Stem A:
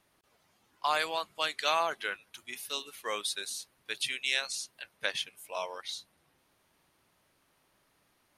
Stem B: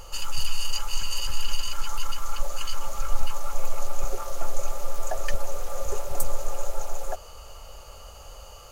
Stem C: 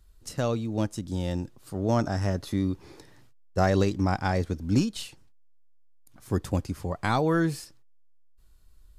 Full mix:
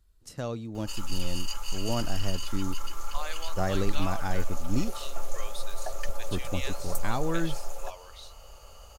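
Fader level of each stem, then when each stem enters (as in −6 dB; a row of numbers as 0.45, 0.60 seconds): −9.5, −5.5, −6.5 decibels; 2.30, 0.75, 0.00 seconds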